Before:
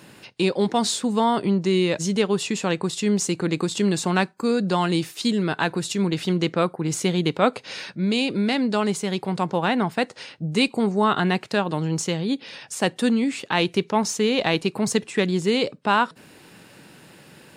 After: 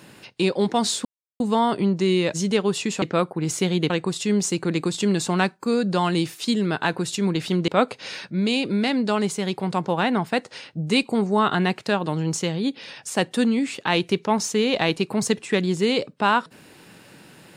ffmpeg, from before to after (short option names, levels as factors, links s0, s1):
-filter_complex "[0:a]asplit=5[s0][s1][s2][s3][s4];[s0]atrim=end=1.05,asetpts=PTS-STARTPTS,afade=t=out:st=1.046:d=0.004:c=hsin,apad=pad_dur=0.35[s5];[s1]atrim=start=1.05:end=2.672,asetpts=PTS-STARTPTS,afade=t=in:d=0.004:c=hsin[s6];[s2]atrim=start=6.448:end=7.332[s7];[s3]atrim=start=2.668:end=6.452[s8];[s4]atrim=start=7.328[s9];[s5][s6]concat=n=2:v=0:a=1[s10];[s10][s7]acrossfade=d=0.004:c1=hsin:c2=hsin[s11];[s11][s8]acrossfade=d=0.004:c1=hsin:c2=hsin[s12];[s12][s9]acrossfade=d=0.004:c1=hsin:c2=hsin"